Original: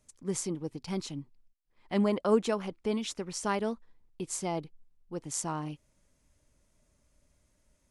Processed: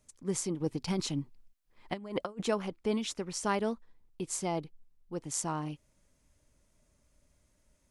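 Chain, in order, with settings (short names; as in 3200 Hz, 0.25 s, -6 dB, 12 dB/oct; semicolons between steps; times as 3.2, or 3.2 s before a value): 0.6–2.43 negative-ratio compressor -33 dBFS, ratio -0.5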